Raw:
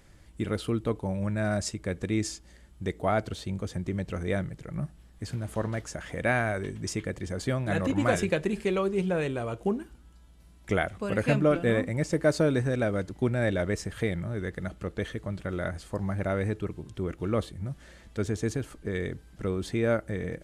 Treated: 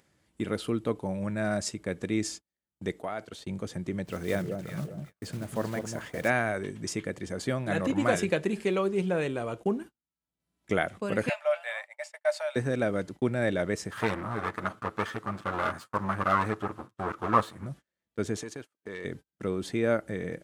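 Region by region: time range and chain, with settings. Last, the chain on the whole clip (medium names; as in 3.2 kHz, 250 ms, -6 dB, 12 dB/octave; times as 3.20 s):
2.96–3.40 s: bass shelf 360 Hz -8 dB + compression 12:1, threshold -29 dBFS
4.05–6.30 s: block-companded coder 5-bit + echo whose repeats swap between lows and highs 195 ms, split 810 Hz, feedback 55%, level -5 dB
11.29–12.56 s: rippled Chebyshev high-pass 580 Hz, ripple 6 dB + band-stop 6.2 kHz, Q 15
13.91–17.66 s: comb filter that takes the minimum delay 9.3 ms + peaking EQ 1.2 kHz +15 dB 0.89 oct
18.36–19.05 s: overdrive pedal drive 12 dB, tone 7.9 kHz, clips at -17 dBFS + transient shaper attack 0 dB, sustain -6 dB + compression 12:1, threshold -34 dBFS
whole clip: gate -40 dBFS, range -38 dB; high-pass 140 Hz 12 dB/octave; upward compressor, threshold -46 dBFS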